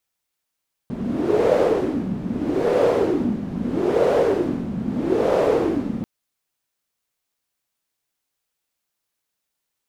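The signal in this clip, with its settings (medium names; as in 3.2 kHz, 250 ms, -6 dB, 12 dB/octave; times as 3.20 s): wind-like swept noise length 5.14 s, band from 200 Hz, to 520 Hz, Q 4.8, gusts 4, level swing 9 dB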